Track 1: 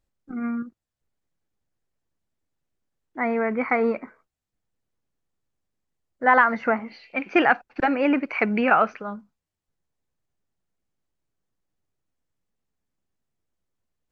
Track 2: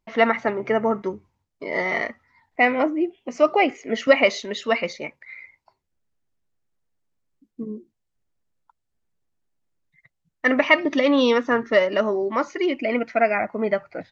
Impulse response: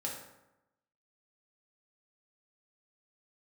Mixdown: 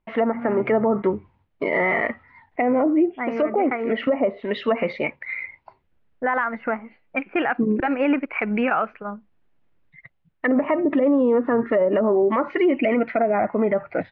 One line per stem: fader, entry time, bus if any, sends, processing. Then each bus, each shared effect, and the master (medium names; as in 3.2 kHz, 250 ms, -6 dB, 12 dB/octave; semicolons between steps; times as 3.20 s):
-7.5 dB, 0.00 s, no send, expander -40 dBFS; transient shaper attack +2 dB, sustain -6 dB; level-controlled noise filter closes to 570 Hz, open at -19 dBFS
+2.5 dB, 0.00 s, no send, low-pass that closes with the level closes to 650 Hz, closed at -15.5 dBFS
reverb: none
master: low-pass 3.1 kHz 24 dB/octave; level rider gain up to 10 dB; peak limiter -12 dBFS, peak gain reduction 11 dB